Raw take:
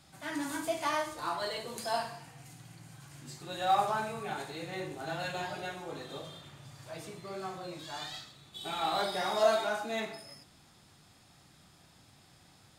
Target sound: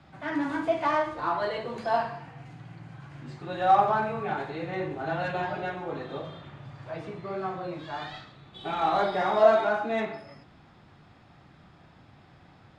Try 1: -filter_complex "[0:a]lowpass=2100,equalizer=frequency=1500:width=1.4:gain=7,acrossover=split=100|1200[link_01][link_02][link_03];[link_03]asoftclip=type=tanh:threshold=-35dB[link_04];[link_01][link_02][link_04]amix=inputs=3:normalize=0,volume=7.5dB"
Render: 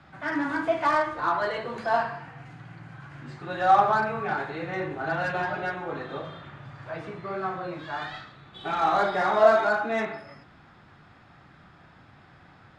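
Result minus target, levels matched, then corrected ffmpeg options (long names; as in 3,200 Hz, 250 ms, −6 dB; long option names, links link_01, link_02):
2,000 Hz band +3.5 dB
-filter_complex "[0:a]lowpass=2100,acrossover=split=100|1200[link_01][link_02][link_03];[link_03]asoftclip=type=tanh:threshold=-35dB[link_04];[link_01][link_02][link_04]amix=inputs=3:normalize=0,volume=7.5dB"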